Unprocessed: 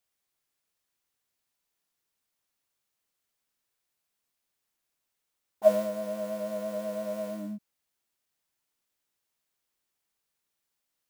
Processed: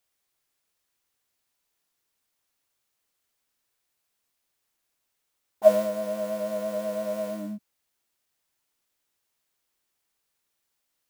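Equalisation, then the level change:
parametric band 180 Hz −3 dB 0.58 octaves
+4.0 dB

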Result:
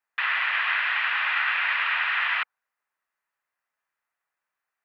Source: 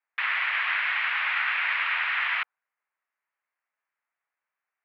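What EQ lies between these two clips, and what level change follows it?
notch filter 2,200 Hz, Q 13
+2.5 dB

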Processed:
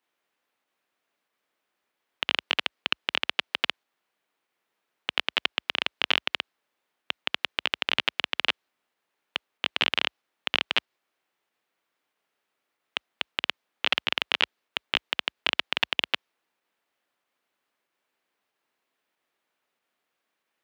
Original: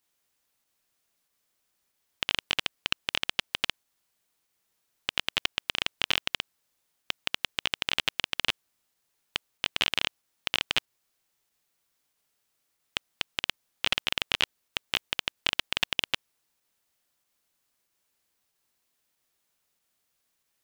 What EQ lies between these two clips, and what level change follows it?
high-pass filter 54 Hz 24 dB per octave
three-way crossover with the lows and the highs turned down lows −18 dB, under 210 Hz, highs −16 dB, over 3,200 Hz
dynamic equaliser 4,500 Hz, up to +4 dB, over −48 dBFS, Q 1.1
+4.0 dB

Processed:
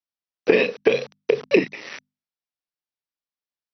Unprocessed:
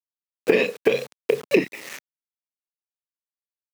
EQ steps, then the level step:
linear-phase brick-wall low-pass 6,000 Hz
mains-hum notches 50/100/150/200/250 Hz
+1.5 dB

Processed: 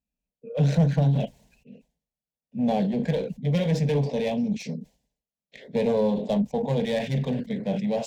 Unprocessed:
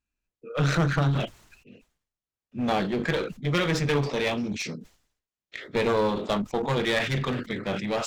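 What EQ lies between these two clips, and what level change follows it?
high-pass filter 48 Hz
tilt shelving filter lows +6.5 dB, about 850 Hz
phaser with its sweep stopped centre 340 Hz, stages 6
0.0 dB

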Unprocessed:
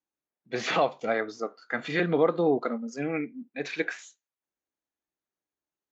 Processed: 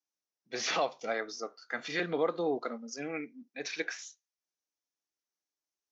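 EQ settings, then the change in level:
high-pass filter 310 Hz 6 dB per octave
low-pass with resonance 5,700 Hz, resonance Q 5.1
−5.5 dB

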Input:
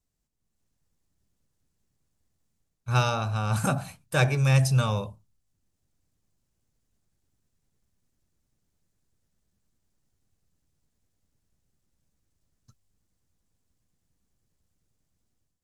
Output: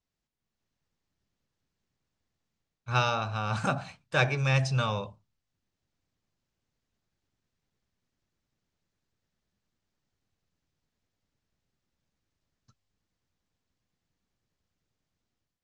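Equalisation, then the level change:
Gaussian smoothing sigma 1.8 samples
spectral tilt +2 dB per octave
0.0 dB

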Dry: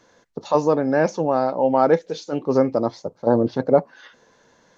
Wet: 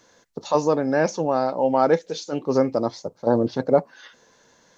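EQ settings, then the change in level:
high-shelf EQ 3,900 Hz +9 dB
−2.0 dB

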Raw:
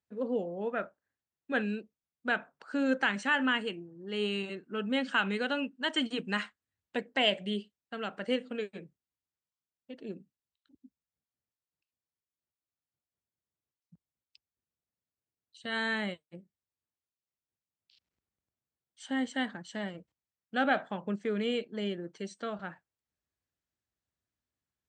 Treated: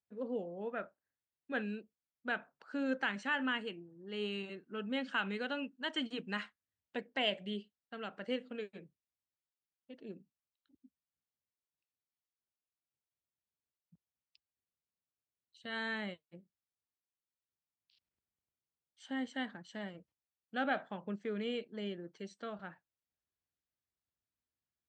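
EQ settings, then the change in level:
low-pass filter 6,200 Hz 12 dB per octave
−6.5 dB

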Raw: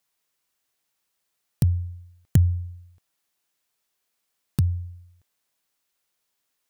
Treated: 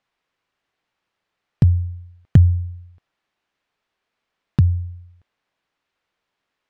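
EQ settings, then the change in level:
low-pass filter 2,700 Hz 12 dB per octave
+6.5 dB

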